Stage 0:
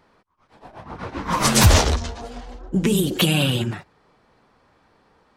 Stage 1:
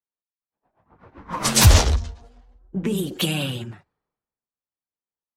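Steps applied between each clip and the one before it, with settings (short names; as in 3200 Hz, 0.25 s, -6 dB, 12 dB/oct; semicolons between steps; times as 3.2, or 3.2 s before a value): three-band expander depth 100%; gain -6.5 dB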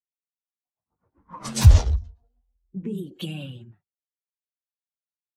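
spectral expander 1.5:1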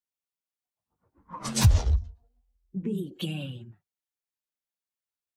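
compressor 6:1, threshold -15 dBFS, peak gain reduction 9.5 dB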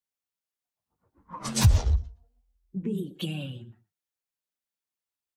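outdoor echo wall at 20 m, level -20 dB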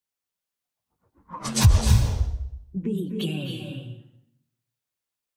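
reverb RT60 0.75 s, pre-delay 0.249 s, DRR 4.5 dB; gain +3 dB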